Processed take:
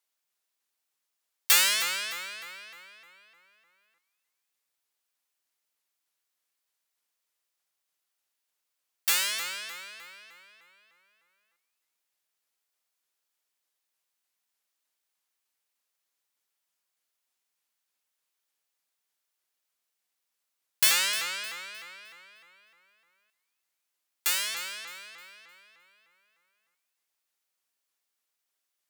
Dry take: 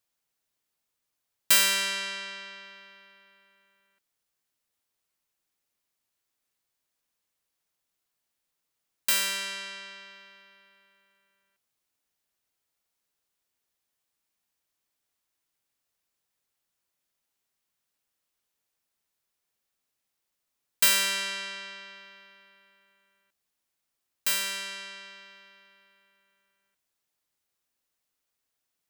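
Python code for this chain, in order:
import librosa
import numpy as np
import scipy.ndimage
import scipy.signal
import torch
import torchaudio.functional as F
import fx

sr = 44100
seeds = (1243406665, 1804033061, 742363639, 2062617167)

p1 = fx.highpass(x, sr, hz=640.0, slope=6)
p2 = p1 + fx.echo_wet_highpass(p1, sr, ms=307, feedback_pct=36, hz=1400.0, wet_db=-15, dry=0)
y = fx.vibrato_shape(p2, sr, shape='saw_up', rate_hz=3.3, depth_cents=250.0)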